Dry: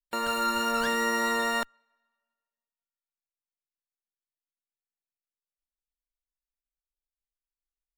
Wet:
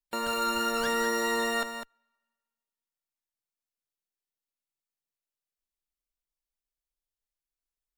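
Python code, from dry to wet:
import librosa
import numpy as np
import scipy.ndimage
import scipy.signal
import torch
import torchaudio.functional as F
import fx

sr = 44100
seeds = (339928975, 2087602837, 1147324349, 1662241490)

p1 = fx.peak_eq(x, sr, hz=1500.0, db=-3.0, octaves=1.7)
y = p1 + fx.echo_single(p1, sr, ms=202, db=-8.5, dry=0)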